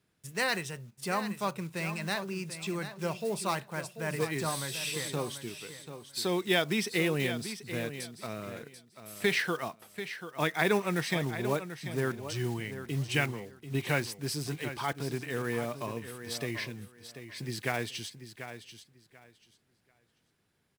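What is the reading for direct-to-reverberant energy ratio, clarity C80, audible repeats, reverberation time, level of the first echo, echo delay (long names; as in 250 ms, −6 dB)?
no reverb audible, no reverb audible, 2, no reverb audible, −11.0 dB, 738 ms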